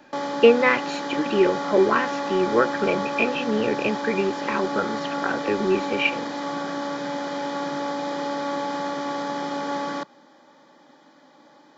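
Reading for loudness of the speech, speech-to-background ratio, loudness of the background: −23.0 LKFS, 5.5 dB, −28.5 LKFS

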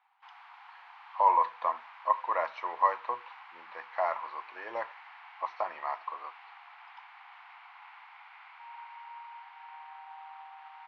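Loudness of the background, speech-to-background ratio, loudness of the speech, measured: −50.0 LKFS, 18.5 dB, −31.5 LKFS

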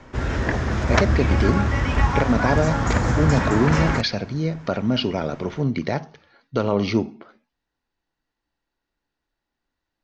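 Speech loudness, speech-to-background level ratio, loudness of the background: −24.0 LKFS, −2.0 dB, −22.0 LKFS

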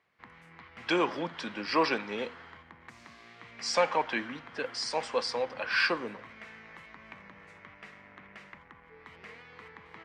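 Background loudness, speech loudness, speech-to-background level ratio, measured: −50.0 LKFS, −31.0 LKFS, 19.0 dB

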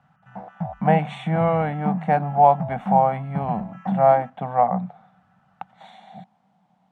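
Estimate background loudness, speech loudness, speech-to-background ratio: −31.0 LKFS, −21.5 LKFS, 9.5 dB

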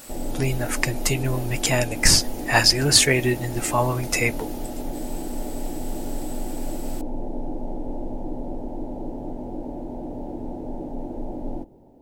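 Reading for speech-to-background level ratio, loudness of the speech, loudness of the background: 13.0 dB, −20.5 LKFS, −33.5 LKFS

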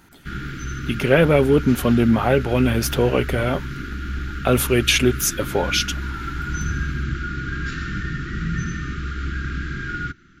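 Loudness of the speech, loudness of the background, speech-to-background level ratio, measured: −19.0 LKFS, −29.0 LKFS, 10.0 dB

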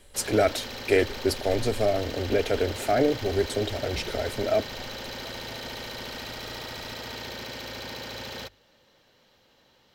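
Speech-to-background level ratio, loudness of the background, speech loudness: 9.5 dB, −36.0 LKFS, −26.5 LKFS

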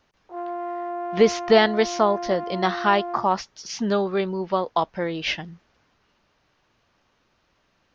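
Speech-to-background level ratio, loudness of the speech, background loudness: 9.0 dB, −23.0 LKFS, −32.0 LKFS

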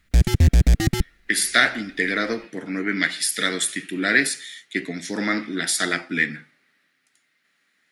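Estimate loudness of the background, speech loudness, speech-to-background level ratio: −20.0 LKFS, −22.5 LKFS, −2.5 dB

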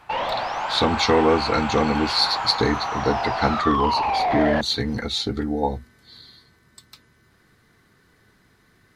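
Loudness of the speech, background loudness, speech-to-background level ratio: −22.5 LKFS, −25.0 LKFS, 2.5 dB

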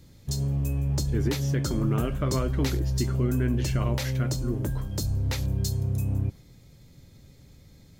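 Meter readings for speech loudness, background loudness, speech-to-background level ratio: −32.0 LKFS, −28.5 LKFS, −3.5 dB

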